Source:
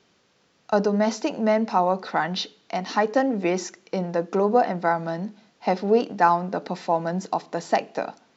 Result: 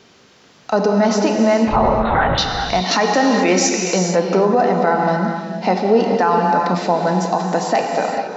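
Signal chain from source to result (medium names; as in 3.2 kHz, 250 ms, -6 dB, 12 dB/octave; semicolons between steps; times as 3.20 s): compression 1.5:1, threshold -35 dBFS, peak gain reduction 8 dB; 1.67–2.38 s: LPC vocoder at 8 kHz whisper; 2.91–3.99 s: treble shelf 2.5 kHz +10.5 dB; gated-style reverb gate 490 ms flat, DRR 2.5 dB; loudness maximiser +17.5 dB; trim -4.5 dB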